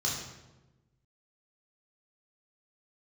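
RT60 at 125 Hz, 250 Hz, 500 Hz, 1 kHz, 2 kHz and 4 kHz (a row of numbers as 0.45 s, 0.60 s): 1.6 s, 1.4 s, 1.2 s, 0.95 s, 0.85 s, 0.75 s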